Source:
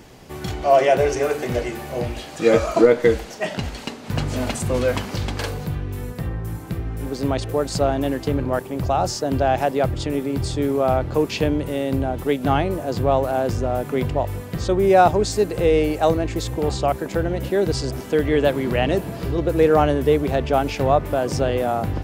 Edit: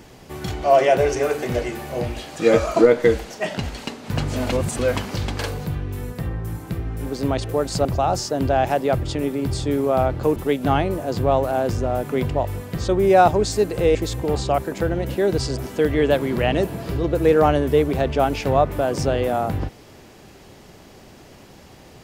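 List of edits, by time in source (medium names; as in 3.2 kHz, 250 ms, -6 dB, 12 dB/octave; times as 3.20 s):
4.52–4.79 s: reverse
7.85–8.76 s: delete
11.27–12.16 s: delete
15.75–16.29 s: delete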